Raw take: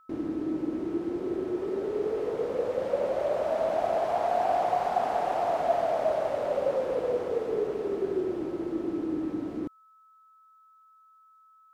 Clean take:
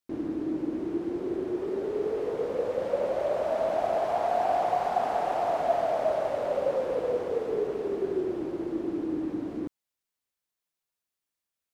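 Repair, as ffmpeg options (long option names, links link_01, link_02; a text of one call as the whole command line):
ffmpeg -i in.wav -af "bandreject=frequency=1300:width=30" out.wav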